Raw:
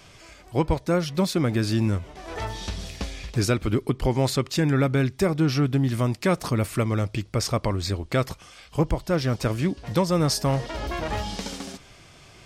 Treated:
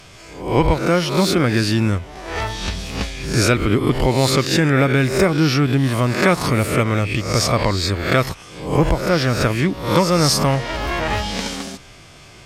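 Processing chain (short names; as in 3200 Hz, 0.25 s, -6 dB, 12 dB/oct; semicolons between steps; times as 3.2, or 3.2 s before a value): spectral swells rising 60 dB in 0.58 s; dynamic EQ 2100 Hz, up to +5 dB, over -40 dBFS, Q 0.81; gain +4.5 dB; AC-3 96 kbps 44100 Hz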